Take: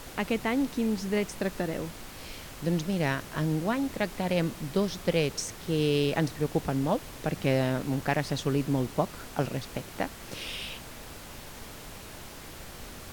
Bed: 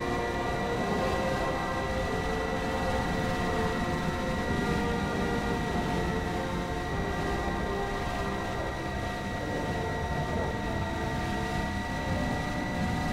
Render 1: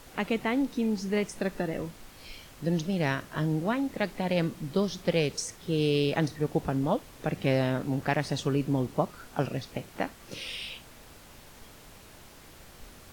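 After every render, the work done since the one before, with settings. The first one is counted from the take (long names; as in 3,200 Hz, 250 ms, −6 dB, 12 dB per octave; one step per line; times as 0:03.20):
noise reduction from a noise print 7 dB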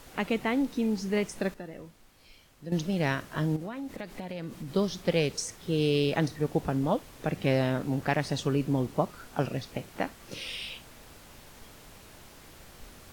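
0:01.54–0:02.72: clip gain −10.5 dB
0:03.56–0:04.74: downward compressor 5 to 1, threshold −34 dBFS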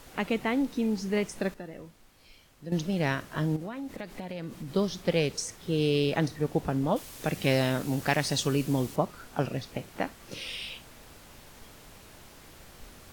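0:06.96–0:08.96: high-shelf EQ 3,200 Hz +11.5 dB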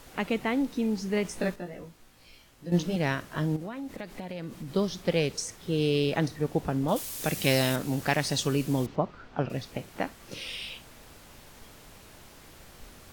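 0:01.23–0:02.96: double-tracking delay 17 ms −2 dB
0:06.88–0:07.76: high-shelf EQ 4,300 Hz +11 dB
0:08.86–0:09.50: high-frequency loss of the air 200 metres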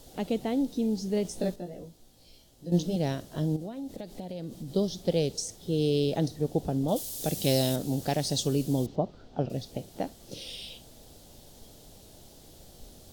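flat-topped bell 1,600 Hz −13.5 dB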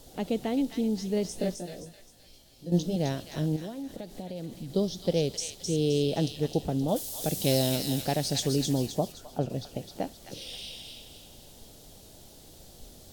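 delay with a high-pass on its return 261 ms, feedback 41%, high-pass 1,600 Hz, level −3.5 dB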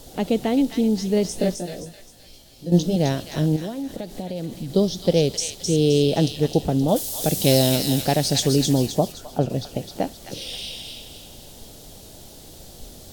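level +8 dB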